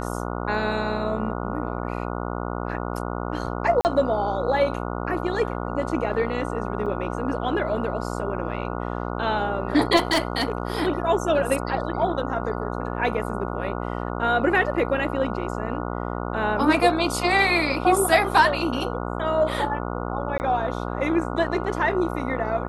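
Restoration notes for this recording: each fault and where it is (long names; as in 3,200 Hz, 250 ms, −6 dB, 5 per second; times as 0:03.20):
mains buzz 60 Hz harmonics 24 −29 dBFS
0:03.81–0:03.85: drop-out 39 ms
0:06.86: drop-out 4.7 ms
0:09.96–0:10.80: clipping −16.5 dBFS
0:20.38–0:20.40: drop-out 19 ms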